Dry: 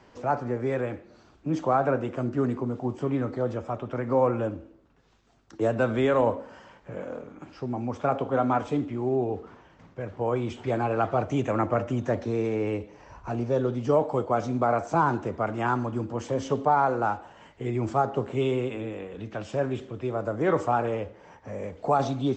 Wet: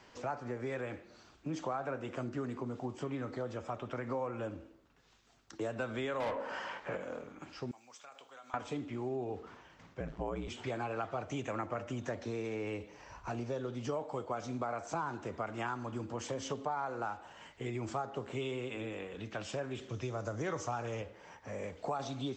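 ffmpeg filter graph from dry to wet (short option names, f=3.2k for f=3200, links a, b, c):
-filter_complex "[0:a]asettb=1/sr,asplit=3[a][b][c];[a]atrim=end=6.204[d];[b]atrim=start=6.2:end=6.97,asetpts=PTS-STARTPTS,afade=t=in:d=0.004:c=qsin,afade=t=out:st=0.766:d=0.004:c=qsin,volume=17.5dB,asoftclip=hard,volume=-17.5dB,asplit=2[e][f];[f]highpass=f=720:p=1,volume=22dB,asoftclip=type=tanh:threshold=-13.5dB[g];[e][g]amix=inputs=2:normalize=0,lowpass=f=1.5k:p=1,volume=-6dB[h];[c]atrim=start=6.966[i];[d][h]acrossfade=d=0.004:c1=hsin:c2=qsin[j];[j][i]acrossfade=d=0.004:c1=qsin:c2=hsin,asettb=1/sr,asplit=3[k][l][m];[k]atrim=end=7.714[n];[l]atrim=start=7.71:end=8.54,asetpts=PTS-STARTPTS,afade=t=in:d=0.004:c=qsin,afade=t=out:st=0.826:d=0.004:c=qsin,aderivative,acompressor=threshold=-46dB:ratio=4:attack=3.2:release=140:knee=1:detection=peak[o];[m]atrim=start=8.536[p];[n][o]acrossfade=d=0.004:c1=hsin:c2=qsin[q];[q][p]acrossfade=d=0.004:c1=qsin:c2=hsin,asettb=1/sr,asplit=3[r][s][t];[r]atrim=end=10.004[u];[s]atrim=start=10:end=10.48,asetpts=PTS-STARTPTS,afade=t=in:d=0.004:c=qsin,afade=t=out:st=0.476:d=0.004:c=qsin,lowshelf=f=320:g=9.5,aeval=exprs='val(0)*sin(2*PI*56*n/s)':c=same[v];[t]atrim=start=10.476[w];[u][v]acrossfade=d=0.004:c1=hsin:c2=qsin[x];[x][w]acrossfade=d=0.004:c1=qsin:c2=hsin,asettb=1/sr,asplit=3[y][z][aa];[y]atrim=end=19.894[ab];[z]atrim=start=19.89:end=21.02,asetpts=PTS-STARTPTS,afade=t=in:d=0.004:c=qsin,afade=t=out:st=1.126:d=0.004:c=qsin,lowpass=f=6.2k:t=q:w=5.5,equalizer=f=110:w=1.2:g=7.5[ac];[aa]atrim=start=21.016[ad];[ab][ac]acrossfade=d=0.004:c1=hsin:c2=qsin[ae];[ae][ad]acrossfade=d=0.004:c1=qsin:c2=hsin,tiltshelf=f=1.3k:g=-5,acompressor=threshold=-33dB:ratio=4,volume=-2dB"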